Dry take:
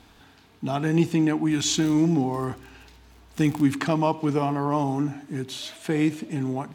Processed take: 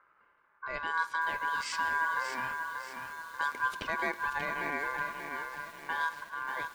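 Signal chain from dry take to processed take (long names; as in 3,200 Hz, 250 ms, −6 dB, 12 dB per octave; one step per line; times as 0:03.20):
low-pass that shuts in the quiet parts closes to 640 Hz, open at −17 dBFS
ring modulation 1,300 Hz
feedback echo at a low word length 586 ms, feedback 55%, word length 7 bits, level −6 dB
level −8 dB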